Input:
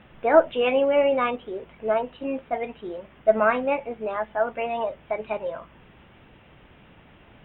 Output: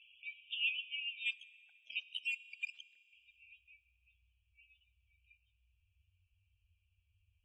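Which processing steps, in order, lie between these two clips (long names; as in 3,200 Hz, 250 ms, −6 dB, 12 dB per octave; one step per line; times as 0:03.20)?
brick-wall band-stop 100–2,300 Hz
dynamic equaliser 1,000 Hz, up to +6 dB, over −59 dBFS, Q 0.93
in parallel at +1.5 dB: downward compressor 12 to 1, threshold −46 dBFS, peak gain reduction 20 dB
0:01.26–0:03.13: on the sum: log-companded quantiser 2 bits
spectral peaks only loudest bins 32
band-pass filter sweep 3,000 Hz → 280 Hz, 0:03.05–0:03.78
convolution reverb RT60 3.0 s, pre-delay 3 ms, DRR 16 dB
level −4 dB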